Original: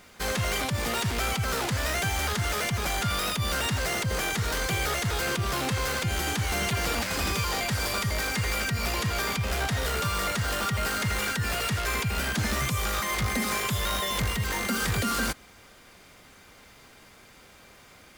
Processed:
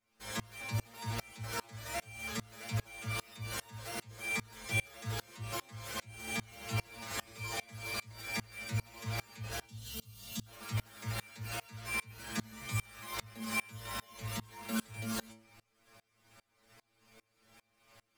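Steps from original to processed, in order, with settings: spectral gain 9.65–10.47, 290–2700 Hz -16 dB; metallic resonator 110 Hz, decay 0.38 s, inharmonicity 0.002; dB-ramp tremolo swelling 2.5 Hz, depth 28 dB; gain +6.5 dB

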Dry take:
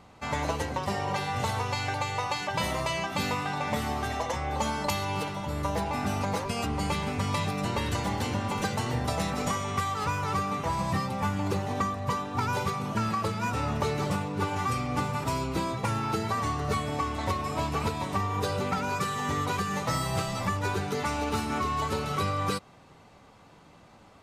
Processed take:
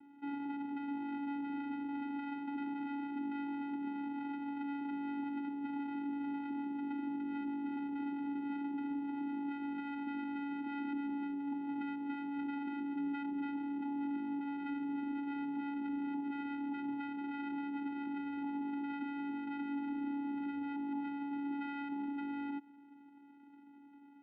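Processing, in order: elliptic low-pass 1100 Hz; limiter -29 dBFS, peak gain reduction 11 dB; vocoder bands 4, square 283 Hz; gain -1.5 dB

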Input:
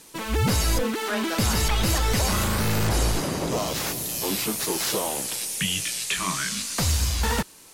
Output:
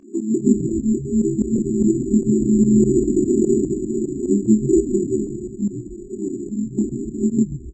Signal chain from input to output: FFT band-pass 200–400 Hz; 0.69–1.56 tilt +3.5 dB/oct; comb 1.8 ms, depth 52%; in parallel at +1.5 dB: compressor 6:1, threshold -50 dBFS, peak gain reduction 20 dB; on the sum: chorus voices 4, 0.77 Hz, delay 25 ms, depth 3 ms; pump 148 bpm, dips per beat 2, -16 dB, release 71 ms; on a send: frequency-shifting echo 0.133 s, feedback 49%, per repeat -80 Hz, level -12.5 dB; on the sum: careless resampling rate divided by 6×, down filtered, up hold; maximiser +24.5 dB; gain -3 dB; MP3 32 kbps 24000 Hz

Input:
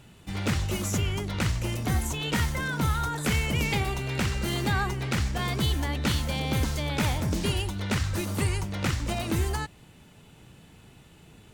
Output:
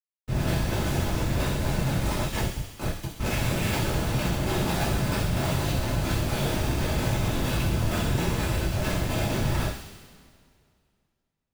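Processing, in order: 2.24–3.2 differentiator; Schmitt trigger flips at -29 dBFS; whisperiser; soft clip -30.5 dBFS, distortion -10 dB; on a send: thin delay 66 ms, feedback 74%, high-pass 2800 Hz, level -5.5 dB; on the sum: two-slope reverb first 0.43 s, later 2.4 s, from -21 dB, DRR -7 dB

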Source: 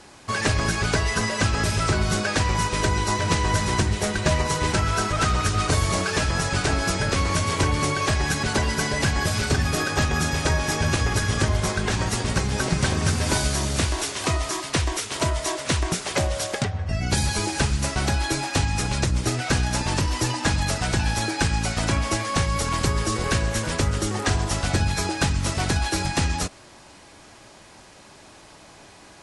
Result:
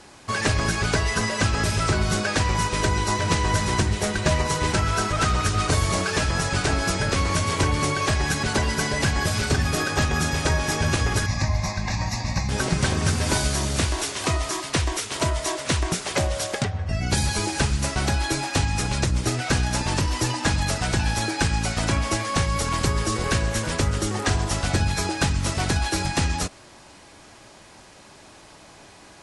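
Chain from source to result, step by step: 11.26–12.49 fixed phaser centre 2100 Hz, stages 8

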